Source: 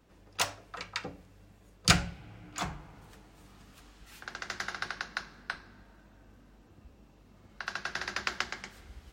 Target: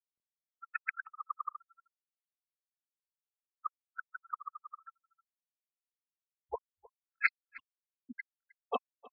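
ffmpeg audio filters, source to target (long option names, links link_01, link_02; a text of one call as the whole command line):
ffmpeg -i in.wav -af "areverse,afftfilt=real='re*gte(hypot(re,im),0.0794)':imag='im*gte(hypot(re,im),0.0794)':win_size=1024:overlap=0.75,crystalizer=i=1:c=0,aecho=1:1:311:0.0794,highpass=frequency=410:width_type=q:width=0.5412,highpass=frequency=410:width_type=q:width=1.307,lowpass=frequency=2600:width_type=q:width=0.5176,lowpass=frequency=2600:width_type=q:width=0.7071,lowpass=frequency=2600:width_type=q:width=1.932,afreqshift=-250,afftfilt=real='re*gt(sin(2*PI*0.92*pts/sr)*(1-2*mod(floor(b*sr/1024/1300),2)),0)':imag='im*gt(sin(2*PI*0.92*pts/sr)*(1-2*mod(floor(b*sr/1024/1300),2)),0)':win_size=1024:overlap=0.75,volume=3dB" out.wav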